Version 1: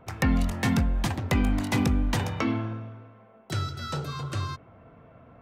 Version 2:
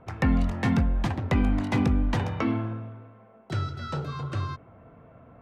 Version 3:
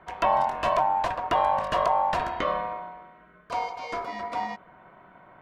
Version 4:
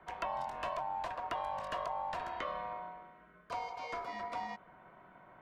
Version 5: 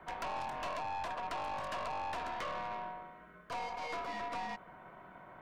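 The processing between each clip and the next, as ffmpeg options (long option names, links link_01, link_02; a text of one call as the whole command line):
ffmpeg -i in.wav -af "aemphasis=mode=reproduction:type=75fm" out.wav
ffmpeg -i in.wav -af "aeval=exprs='val(0)*sin(2*PI*840*n/s)':channel_layout=same,volume=2dB" out.wav
ffmpeg -i in.wav -filter_complex "[0:a]acrossover=split=170|500|3200[link_01][link_02][link_03][link_04];[link_01]acompressor=threshold=-50dB:ratio=4[link_05];[link_02]acompressor=threshold=-48dB:ratio=4[link_06];[link_03]acompressor=threshold=-31dB:ratio=4[link_07];[link_04]acompressor=threshold=-50dB:ratio=4[link_08];[link_05][link_06][link_07][link_08]amix=inputs=4:normalize=0,volume=-6dB" out.wav
ffmpeg -i in.wav -af "aeval=exprs='(tanh(112*val(0)+0.35)-tanh(0.35))/112':channel_layout=same,volume=5.5dB" out.wav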